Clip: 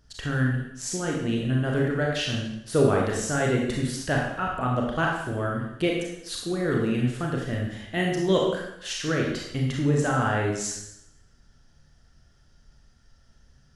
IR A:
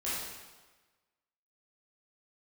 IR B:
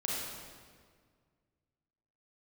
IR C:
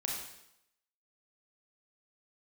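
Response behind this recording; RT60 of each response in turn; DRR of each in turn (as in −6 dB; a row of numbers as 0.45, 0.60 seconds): C; 1.3, 1.8, 0.80 seconds; −10.5, −5.0, −1.5 decibels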